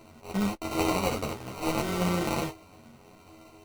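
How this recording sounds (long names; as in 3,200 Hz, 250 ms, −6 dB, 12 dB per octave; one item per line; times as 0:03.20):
a buzz of ramps at a fixed pitch in blocks of 32 samples
phaser sweep stages 2, 1.1 Hz, lowest notch 260–1,200 Hz
aliases and images of a low sample rate 1,700 Hz, jitter 0%
a shimmering, thickened sound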